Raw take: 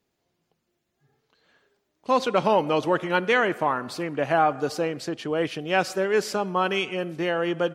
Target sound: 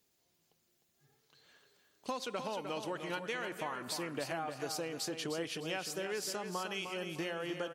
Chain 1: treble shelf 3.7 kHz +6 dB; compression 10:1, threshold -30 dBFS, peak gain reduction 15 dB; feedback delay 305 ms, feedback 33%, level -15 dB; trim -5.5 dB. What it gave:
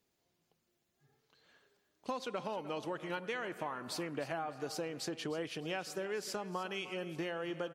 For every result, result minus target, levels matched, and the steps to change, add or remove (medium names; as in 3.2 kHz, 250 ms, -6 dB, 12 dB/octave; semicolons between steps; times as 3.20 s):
echo-to-direct -7.5 dB; 8 kHz band -4.0 dB
change: feedback delay 305 ms, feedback 33%, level -7.5 dB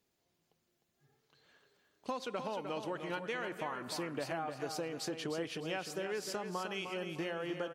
8 kHz band -4.0 dB
change: treble shelf 3.7 kHz +15 dB